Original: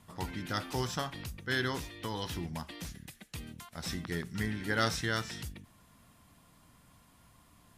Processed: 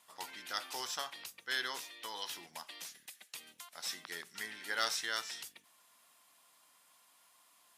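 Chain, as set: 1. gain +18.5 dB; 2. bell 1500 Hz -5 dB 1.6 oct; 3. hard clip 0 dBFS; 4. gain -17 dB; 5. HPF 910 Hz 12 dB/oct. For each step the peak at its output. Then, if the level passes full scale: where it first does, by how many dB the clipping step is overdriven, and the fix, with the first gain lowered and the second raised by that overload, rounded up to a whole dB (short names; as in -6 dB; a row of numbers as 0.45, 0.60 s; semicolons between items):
+5.0, +3.0, 0.0, -17.0, -16.5 dBFS; step 1, 3.0 dB; step 1 +15.5 dB, step 4 -14 dB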